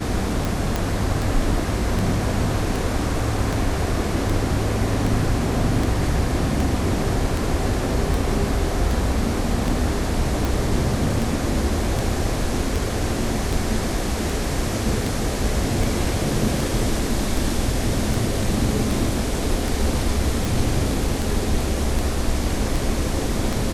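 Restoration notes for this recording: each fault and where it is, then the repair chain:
tick 78 rpm
0.76 s: pop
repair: de-click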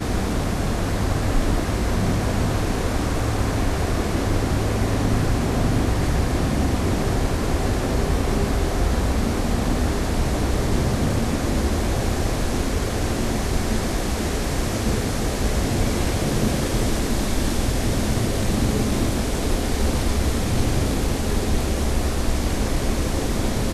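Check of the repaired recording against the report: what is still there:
nothing left

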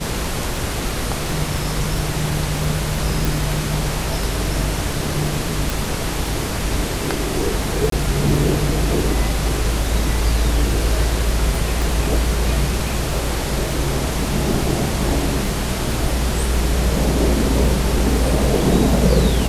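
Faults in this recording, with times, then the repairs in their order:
crackle 22 per s -24 dBFS
3.25 s: pop
5.70 s: pop
7.90–7.92 s: dropout 23 ms
11.82 s: pop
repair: de-click; interpolate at 7.90 s, 23 ms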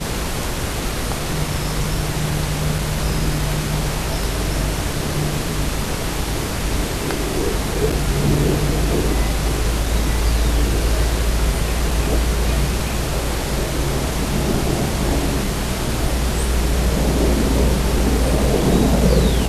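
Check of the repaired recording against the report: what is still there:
nothing left

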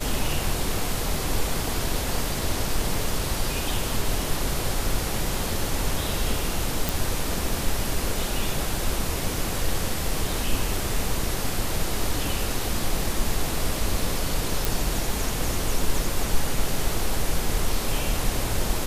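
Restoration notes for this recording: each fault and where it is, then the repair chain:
6.89 s: pop
14.65 s: pop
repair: de-click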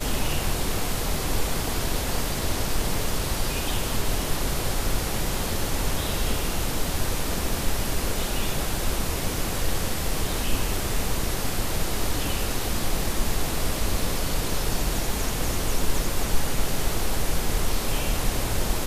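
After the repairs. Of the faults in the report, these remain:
nothing left

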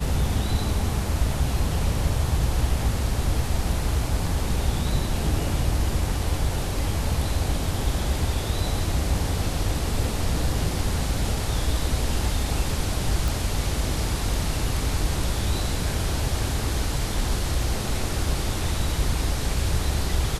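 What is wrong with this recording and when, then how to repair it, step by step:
13.28 s: pop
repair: de-click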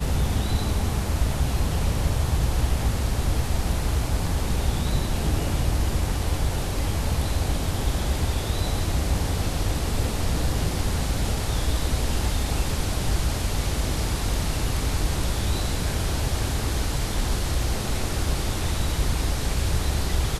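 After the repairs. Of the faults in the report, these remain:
nothing left

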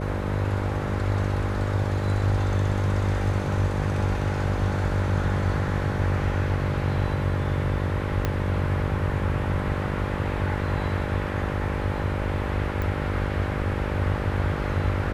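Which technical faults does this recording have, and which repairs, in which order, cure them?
buzz 50 Hz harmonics 12 -30 dBFS
8.25 s: pop -10 dBFS
12.82 s: pop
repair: de-click; de-hum 50 Hz, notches 12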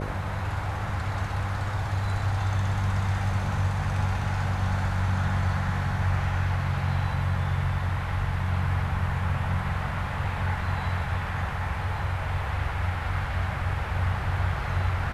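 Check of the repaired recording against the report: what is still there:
8.25 s: pop

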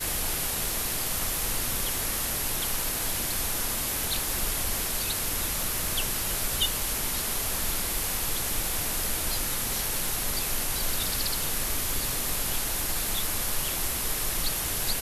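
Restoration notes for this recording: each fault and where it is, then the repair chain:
crackle 35 per s -32 dBFS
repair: de-click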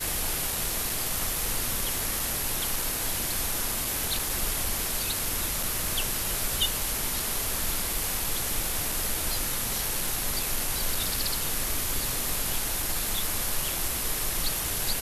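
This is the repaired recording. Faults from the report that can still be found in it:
nothing left

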